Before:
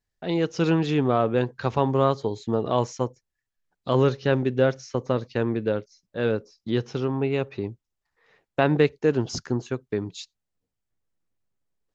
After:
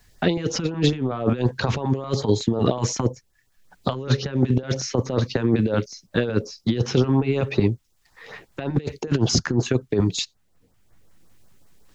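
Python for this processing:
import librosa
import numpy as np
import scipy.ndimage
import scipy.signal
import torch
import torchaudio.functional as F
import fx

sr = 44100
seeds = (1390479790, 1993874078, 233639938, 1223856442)

y = fx.over_compress(x, sr, threshold_db=-28.0, ratio=-0.5)
y = fx.filter_lfo_notch(y, sr, shape='saw_up', hz=5.4, low_hz=260.0, high_hz=3300.0, q=1.1)
y = fx.band_squash(y, sr, depth_pct=40)
y = y * 10.0 ** (9.0 / 20.0)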